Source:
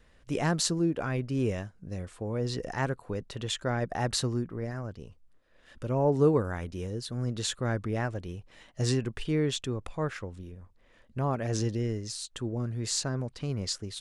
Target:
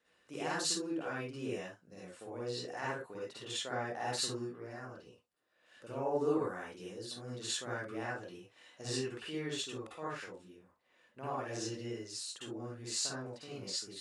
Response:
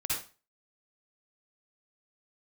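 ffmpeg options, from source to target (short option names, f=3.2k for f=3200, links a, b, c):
-filter_complex "[0:a]highpass=330[a];[1:a]atrim=start_sample=2205,afade=t=out:st=0.19:d=0.01,atrim=end_sample=8820,asetrate=48510,aresample=44100[b];[a][b]afir=irnorm=-1:irlink=0,volume=-8.5dB"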